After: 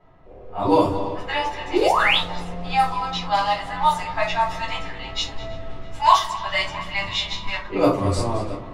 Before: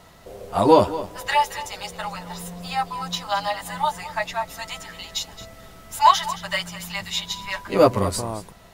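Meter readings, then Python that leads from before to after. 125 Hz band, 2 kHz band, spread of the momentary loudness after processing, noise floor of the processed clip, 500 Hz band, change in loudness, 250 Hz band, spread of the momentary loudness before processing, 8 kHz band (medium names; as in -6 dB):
+2.5 dB, +4.5 dB, 12 LU, -39 dBFS, -1.0 dB, +1.0 dB, +1.5 dB, 17 LU, -5.0 dB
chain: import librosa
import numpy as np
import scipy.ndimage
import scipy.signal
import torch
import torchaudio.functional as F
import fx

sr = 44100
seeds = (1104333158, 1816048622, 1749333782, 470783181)

y = fx.echo_feedback(x, sr, ms=335, feedback_pct=51, wet_db=-18.5)
y = fx.rider(y, sr, range_db=5, speed_s=0.5)
y = fx.spec_paint(y, sr, seeds[0], shape='rise', start_s=1.73, length_s=0.45, low_hz=310.0, high_hz=4100.0, level_db=-19.0)
y = fx.room_shoebox(y, sr, seeds[1], volume_m3=190.0, walls='furnished', distance_m=3.9)
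y = fx.env_lowpass(y, sr, base_hz=1600.0, full_db=-5.5)
y = y * 10.0 ** (-7.5 / 20.0)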